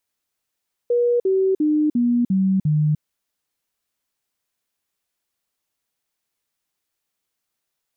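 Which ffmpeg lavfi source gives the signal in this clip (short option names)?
-f lavfi -i "aevalsrc='0.178*clip(min(mod(t,0.35),0.3-mod(t,0.35))/0.005,0,1)*sin(2*PI*481*pow(2,-floor(t/0.35)/3)*mod(t,0.35))':d=2.1:s=44100"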